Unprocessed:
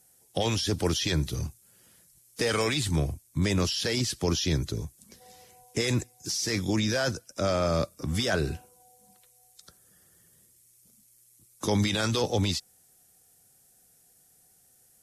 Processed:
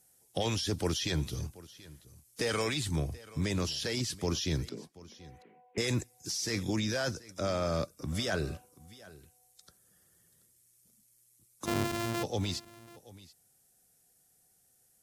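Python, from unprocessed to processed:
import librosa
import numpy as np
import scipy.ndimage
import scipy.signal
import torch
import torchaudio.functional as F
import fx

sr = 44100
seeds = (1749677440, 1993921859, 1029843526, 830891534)

y = fx.sample_sort(x, sr, block=128, at=(11.65, 12.22), fade=0.02)
y = fx.rider(y, sr, range_db=3, speed_s=2.0)
y = fx.quant_float(y, sr, bits=6)
y = fx.ellip_bandpass(y, sr, low_hz=200.0, high_hz=2400.0, order=3, stop_db=40, at=(4.69, 5.78))
y = y + 10.0 ** (-20.0 / 20.0) * np.pad(y, (int(732 * sr / 1000.0), 0))[:len(y)]
y = y * librosa.db_to_amplitude(-5.5)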